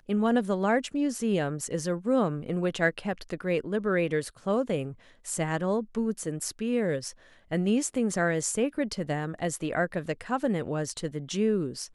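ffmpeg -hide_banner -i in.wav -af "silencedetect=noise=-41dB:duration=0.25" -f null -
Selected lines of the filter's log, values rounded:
silence_start: 4.93
silence_end: 5.25 | silence_duration: 0.32
silence_start: 7.11
silence_end: 7.51 | silence_duration: 0.40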